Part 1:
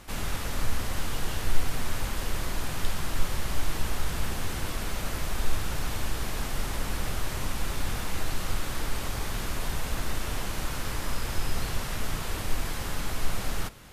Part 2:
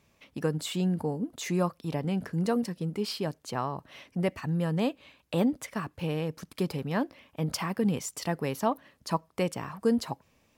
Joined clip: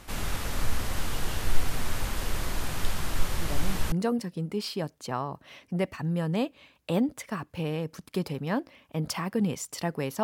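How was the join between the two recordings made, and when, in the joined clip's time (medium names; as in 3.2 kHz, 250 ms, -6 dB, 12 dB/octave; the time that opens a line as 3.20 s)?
part 1
3.27 s: add part 2 from 1.71 s 0.65 s -6.5 dB
3.92 s: go over to part 2 from 2.36 s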